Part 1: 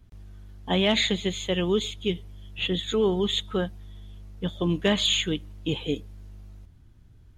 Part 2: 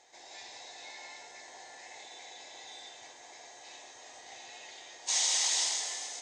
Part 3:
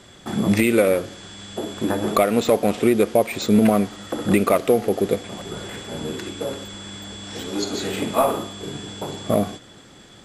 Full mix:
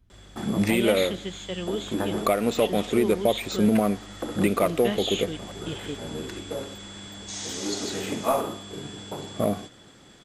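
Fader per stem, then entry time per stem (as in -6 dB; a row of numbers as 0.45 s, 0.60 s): -7.0 dB, -7.5 dB, -5.0 dB; 0.00 s, 2.20 s, 0.10 s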